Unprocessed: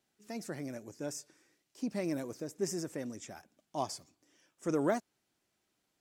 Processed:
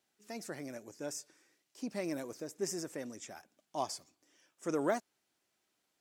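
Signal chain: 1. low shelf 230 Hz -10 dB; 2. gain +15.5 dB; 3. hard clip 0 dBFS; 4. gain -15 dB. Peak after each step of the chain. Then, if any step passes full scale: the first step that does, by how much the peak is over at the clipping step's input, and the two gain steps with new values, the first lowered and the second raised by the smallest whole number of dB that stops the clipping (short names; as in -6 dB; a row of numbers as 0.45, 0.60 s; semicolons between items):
-19.0, -3.5, -3.5, -18.5 dBFS; no overload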